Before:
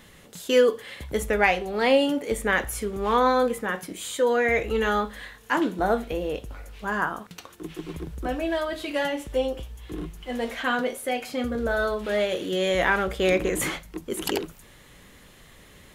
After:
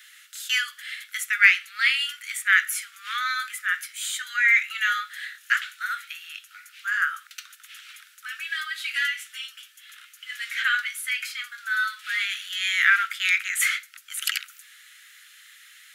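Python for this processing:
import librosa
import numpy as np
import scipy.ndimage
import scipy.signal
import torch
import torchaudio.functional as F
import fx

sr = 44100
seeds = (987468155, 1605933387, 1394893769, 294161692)

y = fx.dynamic_eq(x, sr, hz=2100.0, q=2.9, threshold_db=-43.0, ratio=4.0, max_db=5)
y = scipy.signal.sosfilt(scipy.signal.butter(16, 1300.0, 'highpass', fs=sr, output='sos'), y)
y = y * librosa.db_to_amplitude(4.5)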